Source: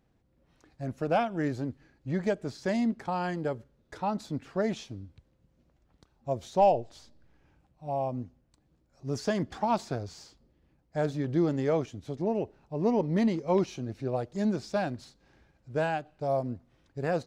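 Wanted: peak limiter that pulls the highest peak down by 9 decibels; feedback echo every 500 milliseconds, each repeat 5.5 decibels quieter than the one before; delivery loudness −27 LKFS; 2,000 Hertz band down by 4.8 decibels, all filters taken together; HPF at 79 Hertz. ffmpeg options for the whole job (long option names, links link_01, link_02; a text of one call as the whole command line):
ffmpeg -i in.wav -af "highpass=79,equalizer=frequency=2000:width_type=o:gain=-6.5,alimiter=limit=-22dB:level=0:latency=1,aecho=1:1:500|1000|1500|2000|2500|3000|3500:0.531|0.281|0.149|0.079|0.0419|0.0222|0.0118,volume=6.5dB" out.wav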